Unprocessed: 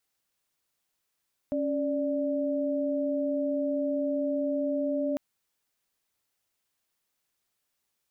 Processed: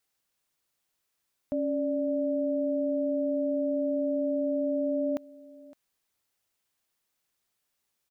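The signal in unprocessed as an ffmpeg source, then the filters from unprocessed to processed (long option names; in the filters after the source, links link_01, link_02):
-f lavfi -i "aevalsrc='0.0376*(sin(2*PI*277.18*t)+sin(2*PI*587.33*t))':duration=3.65:sample_rate=44100"
-af "aecho=1:1:562:0.0891"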